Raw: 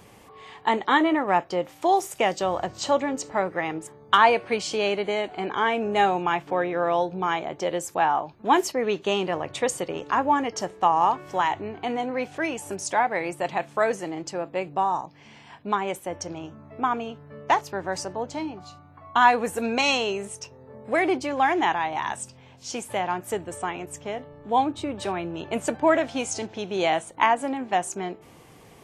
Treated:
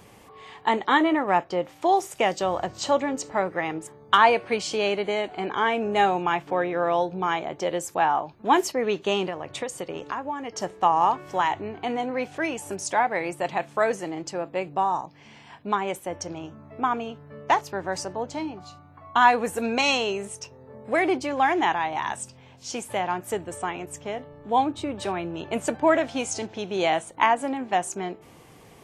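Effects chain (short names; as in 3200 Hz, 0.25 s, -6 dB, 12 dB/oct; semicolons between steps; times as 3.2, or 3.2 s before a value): 1.43–2.17 high shelf 6100 Hz -> 11000 Hz -7.5 dB; 9.28–10.62 compressor 6:1, threshold -28 dBFS, peak gain reduction 11.5 dB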